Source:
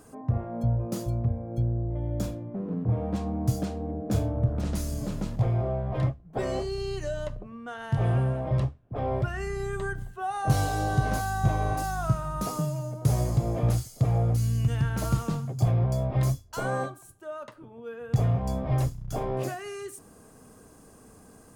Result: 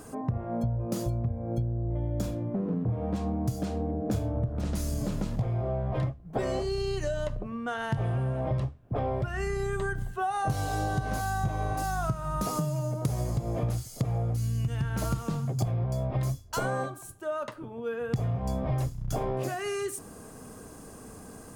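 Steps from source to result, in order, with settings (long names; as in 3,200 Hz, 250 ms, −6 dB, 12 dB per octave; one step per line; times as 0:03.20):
downward compressor 6 to 1, threshold −33 dBFS, peak gain reduction 15.5 dB
level +6.5 dB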